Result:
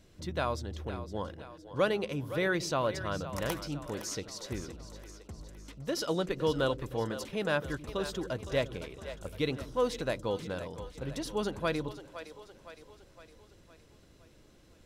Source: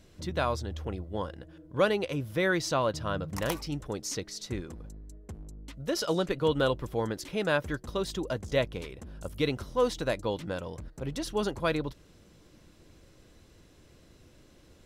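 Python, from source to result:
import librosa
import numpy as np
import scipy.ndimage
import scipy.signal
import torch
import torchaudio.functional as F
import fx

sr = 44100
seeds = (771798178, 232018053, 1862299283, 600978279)

y = fx.echo_split(x, sr, split_hz=380.0, low_ms=86, high_ms=512, feedback_pct=52, wet_db=-12)
y = y * librosa.db_to_amplitude(-3.0)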